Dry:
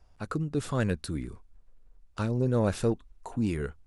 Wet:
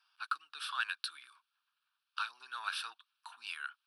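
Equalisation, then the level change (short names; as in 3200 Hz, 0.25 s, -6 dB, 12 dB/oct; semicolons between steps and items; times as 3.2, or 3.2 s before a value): HPF 1500 Hz 24 dB/oct; LPF 3500 Hz 6 dB/oct; fixed phaser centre 2000 Hz, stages 6; +10.0 dB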